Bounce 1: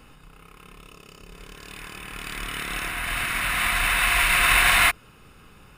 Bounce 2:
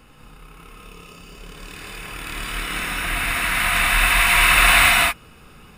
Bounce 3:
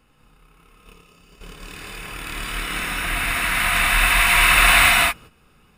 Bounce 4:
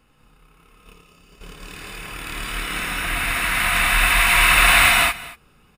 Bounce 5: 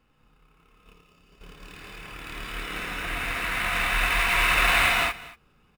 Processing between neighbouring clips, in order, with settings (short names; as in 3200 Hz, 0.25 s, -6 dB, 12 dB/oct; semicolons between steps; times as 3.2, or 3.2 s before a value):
reverb, pre-delay 3 ms, DRR -2.5 dB
gate -39 dBFS, range -10 dB
echo 0.233 s -19 dB
median filter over 5 samples; dynamic EQ 450 Hz, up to +6 dB, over -43 dBFS, Q 1.9; gain -6.5 dB